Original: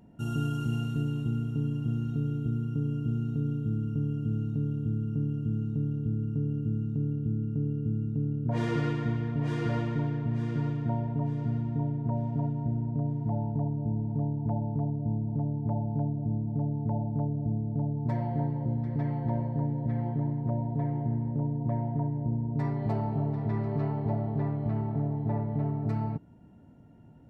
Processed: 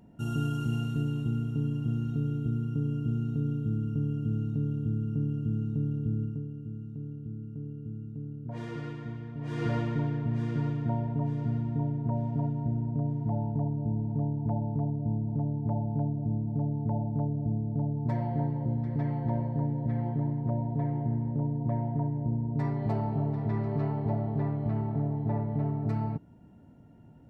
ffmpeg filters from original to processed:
ffmpeg -i in.wav -filter_complex "[0:a]asplit=3[link_01][link_02][link_03];[link_01]atrim=end=6.54,asetpts=PTS-STARTPTS,afade=type=out:start_time=6.23:duration=0.31:curve=qua:silence=0.354813[link_04];[link_02]atrim=start=6.54:end=9.32,asetpts=PTS-STARTPTS,volume=-9dB[link_05];[link_03]atrim=start=9.32,asetpts=PTS-STARTPTS,afade=type=in:duration=0.31:curve=qua:silence=0.354813[link_06];[link_04][link_05][link_06]concat=n=3:v=0:a=1" out.wav

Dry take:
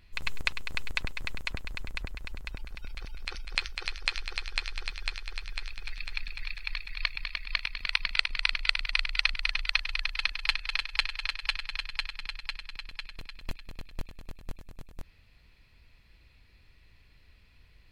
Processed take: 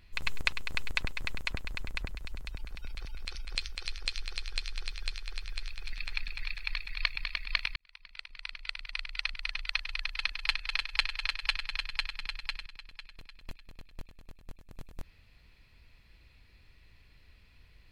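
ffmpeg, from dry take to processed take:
ffmpeg -i in.wav -filter_complex "[0:a]asettb=1/sr,asplit=3[link_01][link_02][link_03];[link_01]atrim=end=2.094[link_04];[link_02]atrim=start=2.09:end=5.93,asetpts=PTS-STARTPTS,afade=type=in:duration=0.004:curve=qsin,afade=type=out:start_time=3.836:duration=0.004:curve=qsin,acrossover=split=140|3000[link_05][link_06][link_07];[link_06]acompressor=threshold=-46dB:ratio=6:attack=3.2:release=140:knee=2.83:detection=peak[link_08];[link_05][link_08][link_07]amix=inputs=3:normalize=0[link_09];[link_03]atrim=start=5.926[link_10];[link_04][link_09]acrossfade=duration=0.004:curve1=hsin:curve2=qsin[link_11];[link_11][link_10]acrossfade=duration=0.004:curve1=qsin:curve2=hsin,asplit=4[link_12][link_13][link_14][link_15];[link_12]atrim=end=7.76,asetpts=PTS-STARTPTS,afade=type=out:start_time=7.756:duration=0.004:curve=hsin[link_16];[link_13]atrim=start=7.76:end=12.662,asetpts=PTS-STARTPTS,afade=type=in:duration=3.52[link_17];[link_14]atrim=start=12.658:end=14.712,asetpts=PTS-STARTPTS,volume=-7.5dB[link_18];[link_15]atrim=start=14.708[link_19];[link_16][link_17]concat=n=2:v=0:a=1[link_20];[link_20][link_18]acrossfade=duration=0.004:curve1=hsin:curve2=hsin[link_21];[link_21][link_19]acrossfade=duration=0.004:curve1=hsin:curve2=hsin" out.wav

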